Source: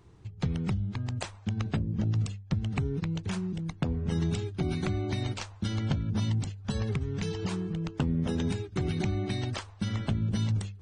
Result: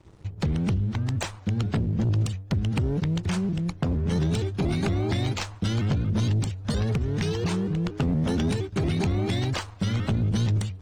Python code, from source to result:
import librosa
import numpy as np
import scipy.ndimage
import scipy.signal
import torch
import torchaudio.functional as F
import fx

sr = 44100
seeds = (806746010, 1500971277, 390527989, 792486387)

y = fx.leveller(x, sr, passes=2)
y = fx.vibrato_shape(y, sr, shape='saw_up', rate_hz=4.3, depth_cents=160.0)